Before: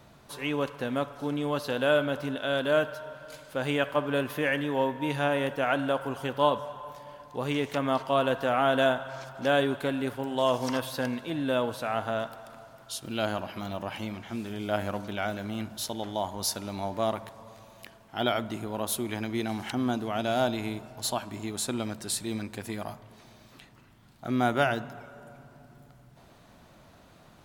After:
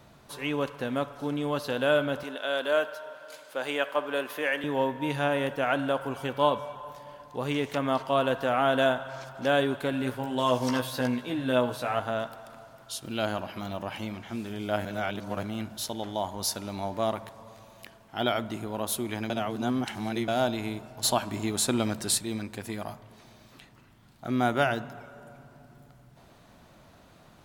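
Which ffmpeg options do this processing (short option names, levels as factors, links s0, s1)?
-filter_complex "[0:a]asettb=1/sr,asplit=3[s0][s1][s2];[s0]atrim=end=2.234[s3];[s1]atrim=start=2.23:end=4.64,asetpts=PTS-STARTPTS,afade=t=in:d=0.004:c=qsin,afade=t=out:st=2.406:d=0.004:c=qsin,highpass=400[s4];[s2]atrim=start=4.636[s5];[s3][s4]acrossfade=d=0.004:c1=hsin:c2=qsin[s6];[s6][s5]acrossfade=d=0.004:c1=qsin:c2=hsin,asettb=1/sr,asplit=3[s7][s8][s9];[s7]atrim=end=6.114[s10];[s8]atrim=start=6.11:end=6.75,asetpts=PTS-STARTPTS,afade=t=in:d=0.004:c=qsin,afade=t=out:st=0.636:d=0.004:c=qsin,aeval=exprs='val(0)+0.00158*sin(2*PI*2300*n/s)':c=same[s11];[s9]atrim=start=6.746[s12];[s10][s11]acrossfade=d=0.004:c1=hsin:c2=qsin[s13];[s13][s12]acrossfade=d=0.004:c1=qsin:c2=hsin,asettb=1/sr,asplit=3[s14][s15][s16];[s14]atrim=end=9.914[s17];[s15]atrim=start=9.91:end=12,asetpts=PTS-STARTPTS,afade=t=in:d=0.004:c=qsin,afade=t=out:st=2.086:d=0.004:c=qsin,asplit=2[s18][s19];[s19]adelay=16,volume=0.596[s20];[s18][s20]amix=inputs=2:normalize=0,atrim=end_sample=92169[s21];[s16]atrim=start=11.996[s22];[s17][s21]acrossfade=d=0.004:c1=hsin:c2=qsin[s23];[s23][s22]acrossfade=d=0.004:c1=qsin:c2=hsin,asplit=7[s24][s25][s26][s27][s28][s29][s30];[s24]atrim=end=14.852[s31];[s25]atrim=start=14.848:end=15.432,asetpts=PTS-STARTPTS,areverse[s32];[s26]atrim=start=15.428:end=19.302[s33];[s27]atrim=start=19.298:end=20.282,asetpts=PTS-STARTPTS,areverse[s34];[s28]atrim=start=20.278:end=21.032[s35];[s29]atrim=start=21.028:end=22.182,asetpts=PTS-STARTPTS,volume=1.78[s36];[s30]atrim=start=22.178[s37];[s31][s32]acrossfade=d=0.004:c1=hsin:c2=hsin[s38];[s38][s33]acrossfade=d=0.004:c1=hsin:c2=hsin[s39];[s39][s34]acrossfade=d=0.004:c1=hsin:c2=hsin[s40];[s40][s35]acrossfade=d=0.004:c1=hsin:c2=hsin[s41];[s41][s36]acrossfade=d=0.004:c1=hsin:c2=hsin[s42];[s42][s37]acrossfade=d=0.004:c1=hsin:c2=hsin"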